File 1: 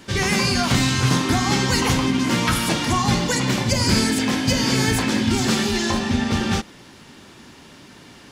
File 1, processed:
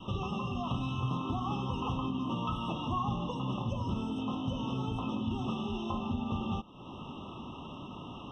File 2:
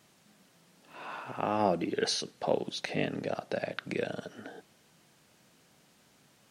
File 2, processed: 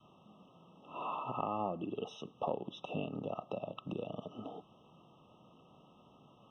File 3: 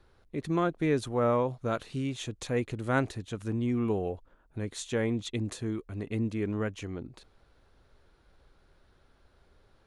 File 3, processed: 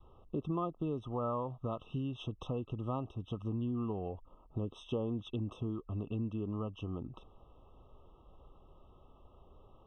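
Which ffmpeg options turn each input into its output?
-af "acompressor=threshold=-39dB:ratio=3,adynamicequalizer=threshold=0.00178:dfrequency=440:dqfactor=1:tfrequency=440:tqfactor=1:attack=5:release=100:ratio=0.375:range=2.5:mode=cutabove:tftype=bell,lowpass=f=1.9k:t=q:w=2.1,afftfilt=real='re*eq(mod(floor(b*sr/1024/1300),2),0)':imag='im*eq(mod(floor(b*sr/1024/1300),2),0)':win_size=1024:overlap=0.75,volume=4dB"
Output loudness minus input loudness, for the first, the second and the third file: -15.5, -8.0, -7.0 LU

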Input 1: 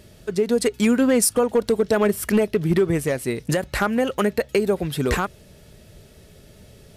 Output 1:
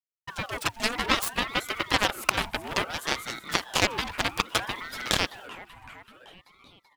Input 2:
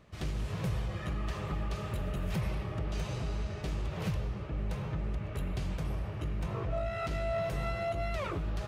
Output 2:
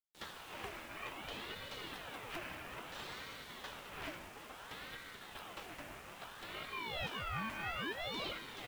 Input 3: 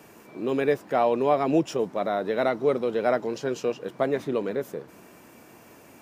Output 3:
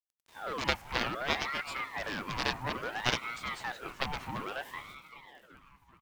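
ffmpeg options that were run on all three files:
-filter_complex "[0:a]highpass=210,agate=range=-33dB:threshold=-42dB:ratio=3:detection=peak,equalizer=f=1.9k:t=o:w=1.2:g=12.5,acrusher=bits=7:mix=0:aa=0.000001,asplit=2[a][b];[b]asplit=6[c][d][e][f][g][h];[c]adelay=383,afreqshift=35,volume=-15.5dB[i];[d]adelay=766,afreqshift=70,volume=-19.9dB[j];[e]adelay=1149,afreqshift=105,volume=-24.4dB[k];[f]adelay=1532,afreqshift=140,volume=-28.8dB[l];[g]adelay=1915,afreqshift=175,volume=-33.2dB[m];[h]adelay=2298,afreqshift=210,volume=-37.7dB[n];[i][j][k][l][m][n]amix=inputs=6:normalize=0[o];[a][o]amix=inputs=2:normalize=0,aeval=exprs='0.891*(cos(1*acos(clip(val(0)/0.891,-1,1)))-cos(1*PI/2))+0.282*(cos(2*acos(clip(val(0)/0.891,-1,1)))-cos(2*PI/2))+0.2*(cos(7*acos(clip(val(0)/0.891,-1,1)))-cos(7*PI/2))':c=same,aeval=exprs='val(0)*sin(2*PI*1100*n/s+1100*0.6/0.6*sin(2*PI*0.6*n/s))':c=same,volume=-1.5dB"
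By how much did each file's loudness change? -6.5, -8.5, -9.0 LU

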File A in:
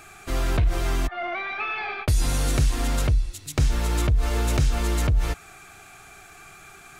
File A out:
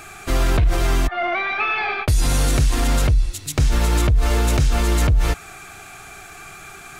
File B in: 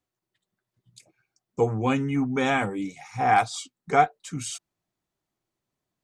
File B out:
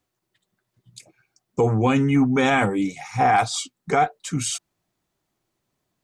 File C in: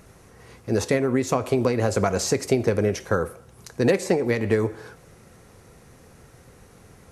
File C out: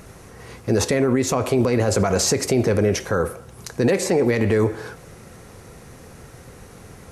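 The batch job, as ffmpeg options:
-af "alimiter=limit=-17.5dB:level=0:latency=1:release=27,volume=7.5dB"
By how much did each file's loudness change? +5.0, +4.0, +3.0 LU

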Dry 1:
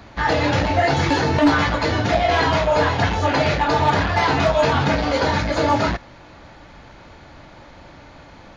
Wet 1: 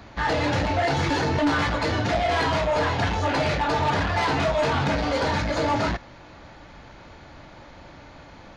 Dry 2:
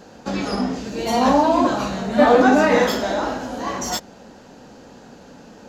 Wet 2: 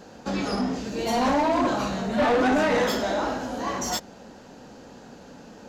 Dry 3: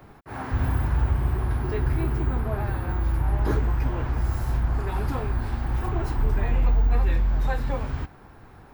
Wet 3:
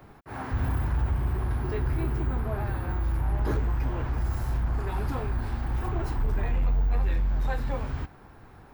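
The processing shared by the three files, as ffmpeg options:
-af "asoftclip=type=tanh:threshold=-15.5dB,volume=-2dB"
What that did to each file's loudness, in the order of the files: -5.0, -5.5, -3.5 LU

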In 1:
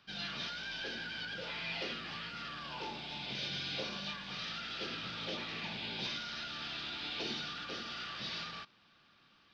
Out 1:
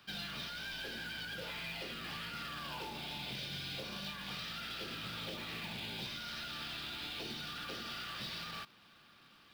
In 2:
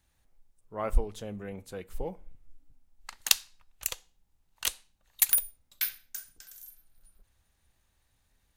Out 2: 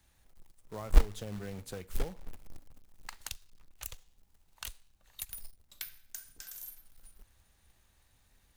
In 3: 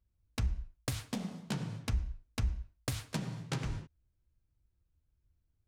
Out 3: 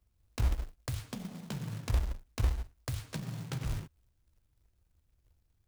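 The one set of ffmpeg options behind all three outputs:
-filter_complex "[0:a]acrossover=split=130[a][b];[b]acompressor=threshold=-44dB:ratio=16[c];[a][c]amix=inputs=2:normalize=0,acrusher=bits=3:mode=log:mix=0:aa=0.000001,volume=4dB"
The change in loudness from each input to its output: -2.0, -9.0, +1.5 LU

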